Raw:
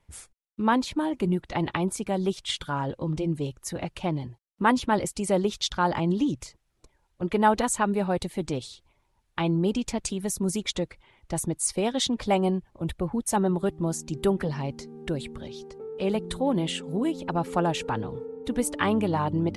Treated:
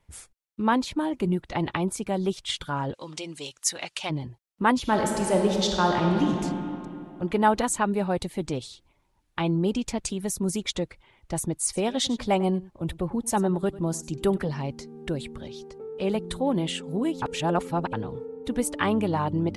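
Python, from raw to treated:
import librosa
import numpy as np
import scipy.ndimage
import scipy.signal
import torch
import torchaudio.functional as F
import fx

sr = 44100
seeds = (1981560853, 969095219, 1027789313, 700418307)

y = fx.weighting(x, sr, curve='ITU-R 468', at=(2.93, 4.09), fade=0.02)
y = fx.reverb_throw(y, sr, start_s=4.8, length_s=1.62, rt60_s=2.8, drr_db=1.0)
y = fx.echo_single(y, sr, ms=97, db=-18.5, at=(11.63, 14.38))
y = fx.edit(y, sr, fx.reverse_span(start_s=17.22, length_s=0.71), tone=tone)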